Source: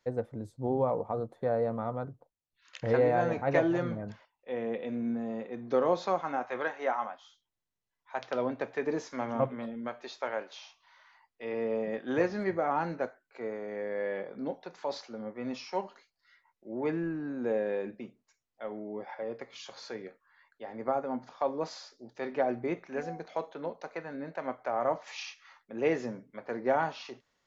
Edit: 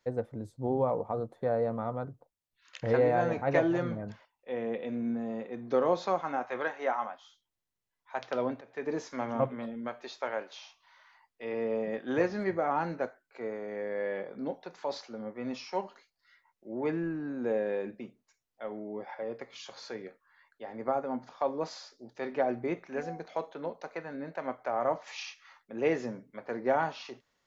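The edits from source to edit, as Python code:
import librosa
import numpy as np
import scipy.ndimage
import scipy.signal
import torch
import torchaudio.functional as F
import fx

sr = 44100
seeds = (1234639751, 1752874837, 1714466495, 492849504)

y = fx.edit(x, sr, fx.fade_in_from(start_s=8.61, length_s=0.5, curve='qsin', floor_db=-23.0), tone=tone)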